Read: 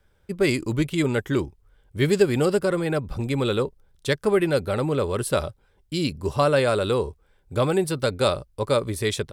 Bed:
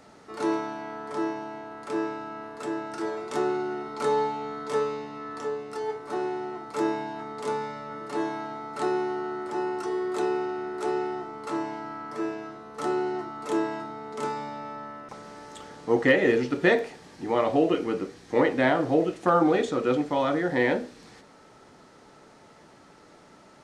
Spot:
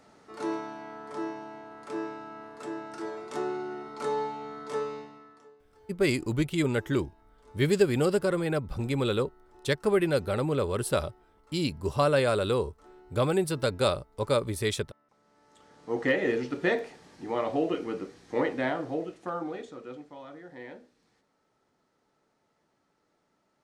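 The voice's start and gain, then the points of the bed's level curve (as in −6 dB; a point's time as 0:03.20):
5.60 s, −4.0 dB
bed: 0:04.99 −5.5 dB
0:05.56 −27 dB
0:15.08 −27 dB
0:16.05 −5.5 dB
0:18.50 −5.5 dB
0:20.19 −20.5 dB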